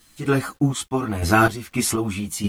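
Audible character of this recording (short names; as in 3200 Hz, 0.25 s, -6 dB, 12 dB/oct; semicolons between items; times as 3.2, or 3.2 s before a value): random-step tremolo 4.1 Hz, depth 75%; a quantiser's noise floor 10-bit, dither none; a shimmering, thickened sound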